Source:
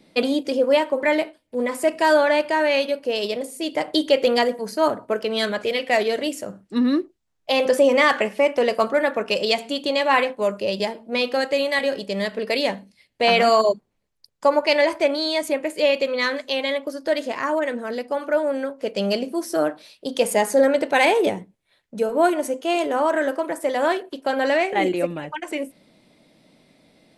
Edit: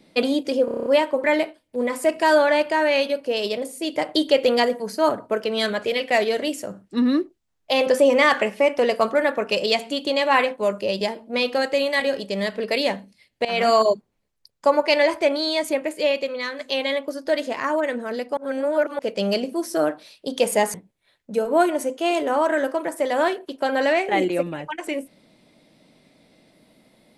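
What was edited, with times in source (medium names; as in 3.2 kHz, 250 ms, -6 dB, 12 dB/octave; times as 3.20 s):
0.65 s: stutter 0.03 s, 8 plays
13.24–13.60 s: fade in equal-power, from -19 dB
15.58–16.38 s: fade out, to -8.5 dB
18.16–18.78 s: reverse
20.53–21.38 s: delete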